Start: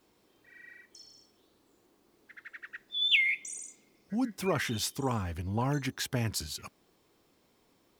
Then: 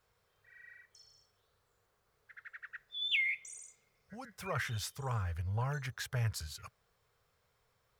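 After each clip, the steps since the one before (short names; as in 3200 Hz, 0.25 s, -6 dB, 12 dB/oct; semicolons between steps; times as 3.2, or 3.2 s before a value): EQ curve 120 Hz 0 dB, 310 Hz -29 dB, 450 Hz -7 dB, 890 Hz -8 dB, 1400 Hz 0 dB, 2700 Hz -8 dB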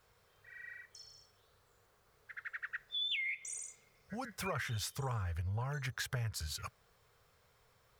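compressor 10:1, threshold -41 dBFS, peak gain reduction 14 dB; gain +6 dB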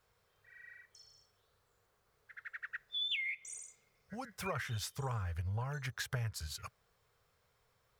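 upward expander 1.5:1, over -47 dBFS; gain +1 dB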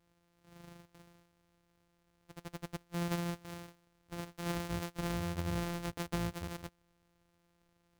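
sample sorter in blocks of 256 samples; gain +1.5 dB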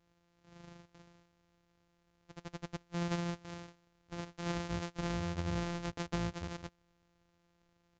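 downsampling 16000 Hz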